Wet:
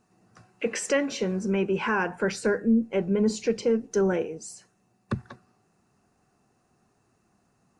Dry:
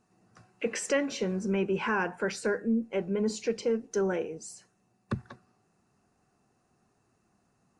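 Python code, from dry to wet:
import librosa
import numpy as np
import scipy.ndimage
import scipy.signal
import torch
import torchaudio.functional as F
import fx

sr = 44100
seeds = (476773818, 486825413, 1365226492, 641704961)

y = fx.low_shelf(x, sr, hz=220.0, db=6.5, at=(2.1, 4.23))
y = y * 10.0 ** (3.0 / 20.0)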